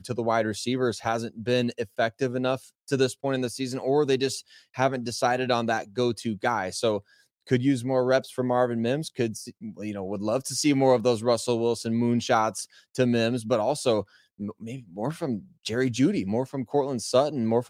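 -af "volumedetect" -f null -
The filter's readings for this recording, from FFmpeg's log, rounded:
mean_volume: -26.1 dB
max_volume: -6.7 dB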